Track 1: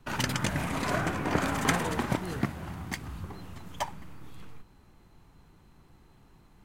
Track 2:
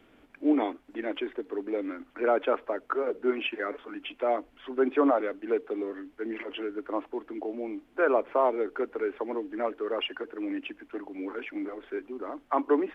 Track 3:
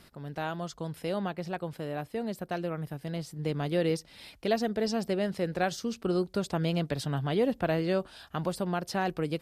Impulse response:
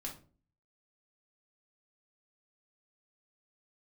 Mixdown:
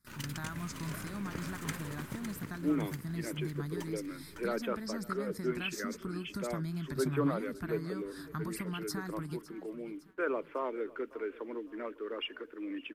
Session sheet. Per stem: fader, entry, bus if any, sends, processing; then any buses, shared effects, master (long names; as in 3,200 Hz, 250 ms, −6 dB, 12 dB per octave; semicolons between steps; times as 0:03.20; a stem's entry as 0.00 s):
−12.5 dB, 0.00 s, no send, echo send −8.5 dB, dead-zone distortion −46 dBFS
−6.0 dB, 2.20 s, no send, echo send −21 dB, no processing
+1.0 dB, 0.00 s, no send, echo send −17.5 dB, downward compressor, threshold −32 dBFS, peak gain reduction 10 dB; phaser with its sweep stopped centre 1,200 Hz, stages 4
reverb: not used
echo: repeating echo 557 ms, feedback 43%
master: parametric band 740 Hz −13 dB 0.61 octaves; noise gate with hold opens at −47 dBFS; high-shelf EQ 10,000 Hz +9 dB